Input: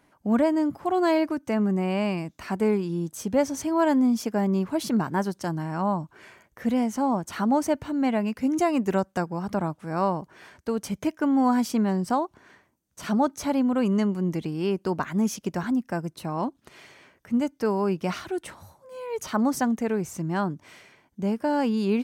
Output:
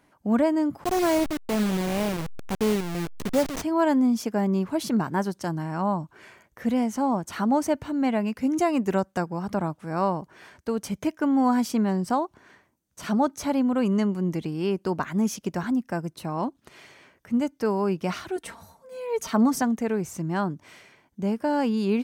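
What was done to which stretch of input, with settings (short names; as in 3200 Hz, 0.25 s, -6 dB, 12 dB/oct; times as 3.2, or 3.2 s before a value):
0.84–3.62 level-crossing sampler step -25 dBFS
18.36–19.62 comb 4.4 ms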